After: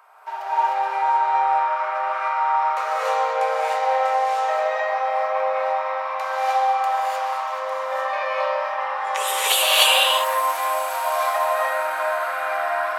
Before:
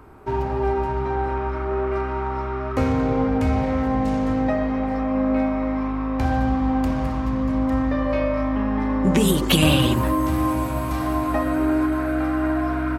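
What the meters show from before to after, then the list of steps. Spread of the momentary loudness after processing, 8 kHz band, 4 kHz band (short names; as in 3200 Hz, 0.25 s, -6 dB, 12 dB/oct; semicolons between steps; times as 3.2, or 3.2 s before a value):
8 LU, +7.0 dB, +7.5 dB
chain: steep high-pass 600 Hz 48 dB/oct; non-linear reverb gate 0.33 s rising, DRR -7.5 dB; gain -1 dB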